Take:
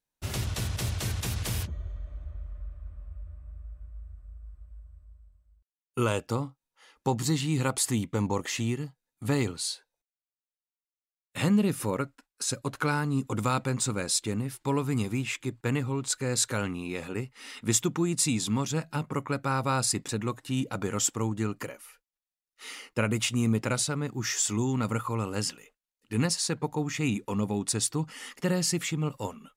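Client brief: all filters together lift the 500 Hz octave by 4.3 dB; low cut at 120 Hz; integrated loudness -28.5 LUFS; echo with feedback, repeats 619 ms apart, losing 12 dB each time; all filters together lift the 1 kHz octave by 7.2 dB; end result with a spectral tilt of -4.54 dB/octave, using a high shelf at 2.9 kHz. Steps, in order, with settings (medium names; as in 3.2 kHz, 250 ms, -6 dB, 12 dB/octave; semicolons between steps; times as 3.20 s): high-pass 120 Hz; peaking EQ 500 Hz +3.5 dB; peaking EQ 1 kHz +8.5 dB; treble shelf 2.9 kHz -3 dB; feedback delay 619 ms, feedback 25%, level -12 dB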